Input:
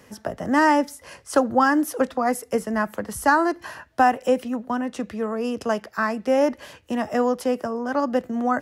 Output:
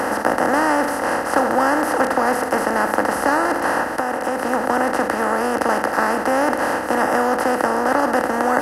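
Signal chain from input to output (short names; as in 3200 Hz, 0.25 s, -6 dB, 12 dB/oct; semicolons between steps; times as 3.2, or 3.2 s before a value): per-bin compression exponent 0.2; 3.87–4.45 compressor, threshold -12 dBFS, peak gain reduction 6.5 dB; gain -6 dB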